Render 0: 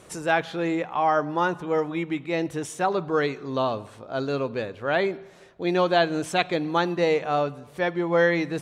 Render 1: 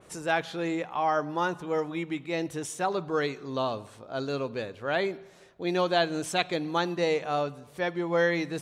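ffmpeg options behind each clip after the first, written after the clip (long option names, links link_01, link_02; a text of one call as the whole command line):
ffmpeg -i in.wav -af "adynamicequalizer=threshold=0.00794:dfrequency=3500:dqfactor=0.7:tfrequency=3500:tqfactor=0.7:attack=5:release=100:ratio=0.375:range=3:mode=boostabove:tftype=highshelf,volume=-4.5dB" out.wav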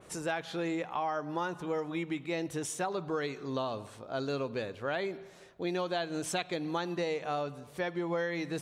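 ffmpeg -i in.wav -af "acompressor=threshold=-30dB:ratio=6" out.wav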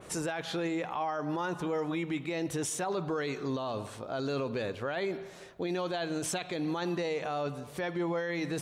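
ffmpeg -i in.wav -af "alimiter=level_in=6.5dB:limit=-24dB:level=0:latency=1:release=20,volume=-6.5dB,volume=5.5dB" out.wav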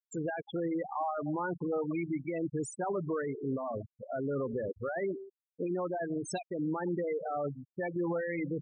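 ffmpeg -i in.wav -af "afftfilt=real='re*gte(hypot(re,im),0.0562)':imag='im*gte(hypot(re,im),0.0562)':win_size=1024:overlap=0.75" out.wav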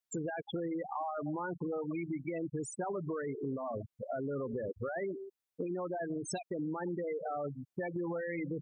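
ffmpeg -i in.wav -af "acompressor=threshold=-40dB:ratio=4,volume=4.5dB" out.wav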